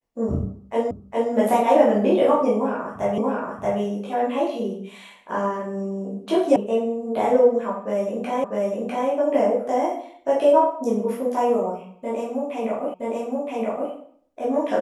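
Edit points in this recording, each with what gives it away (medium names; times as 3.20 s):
0.91 s: repeat of the last 0.41 s
3.18 s: repeat of the last 0.63 s
6.56 s: sound stops dead
8.44 s: repeat of the last 0.65 s
12.94 s: repeat of the last 0.97 s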